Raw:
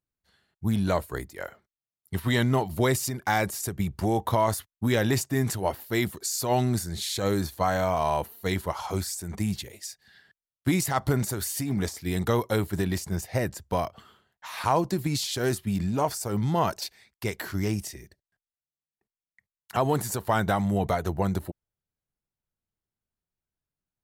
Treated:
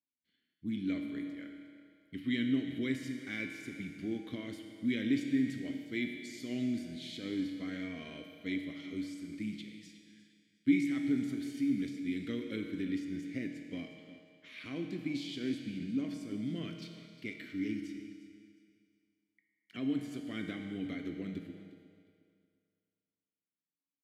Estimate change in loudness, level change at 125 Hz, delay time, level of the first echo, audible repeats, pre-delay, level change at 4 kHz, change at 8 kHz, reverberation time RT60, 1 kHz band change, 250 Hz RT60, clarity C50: -9.5 dB, -18.0 dB, 358 ms, -16.0 dB, 2, 6 ms, -11.5 dB, under -20 dB, 2.3 s, -30.5 dB, 1.9 s, 4.5 dB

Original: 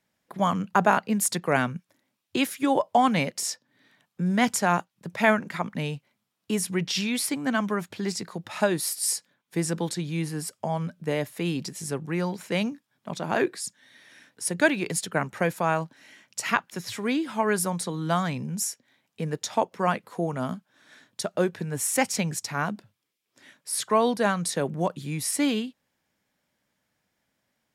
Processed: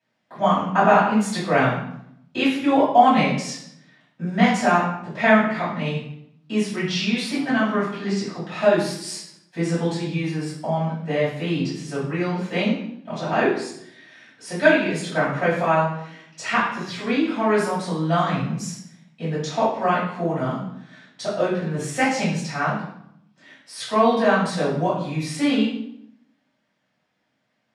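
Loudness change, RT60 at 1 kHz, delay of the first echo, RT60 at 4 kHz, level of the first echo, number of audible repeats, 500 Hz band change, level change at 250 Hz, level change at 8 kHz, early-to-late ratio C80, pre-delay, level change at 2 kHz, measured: +5.0 dB, 0.70 s, no echo, 0.60 s, no echo, no echo, +6.0 dB, +5.5 dB, -7.0 dB, 6.5 dB, 3 ms, +5.0 dB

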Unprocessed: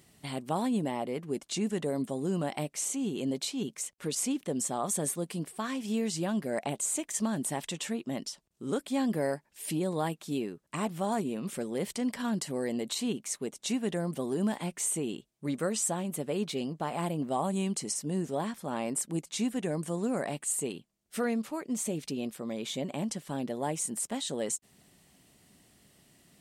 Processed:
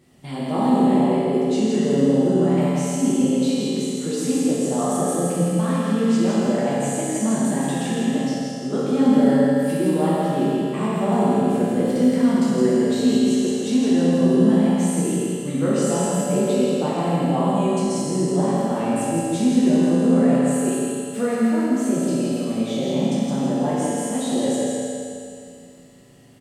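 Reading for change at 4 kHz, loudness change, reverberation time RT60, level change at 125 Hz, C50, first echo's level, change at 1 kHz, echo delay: +6.0 dB, +12.5 dB, 2.4 s, +13.5 dB, -5.5 dB, -2.5 dB, +11.0 dB, 164 ms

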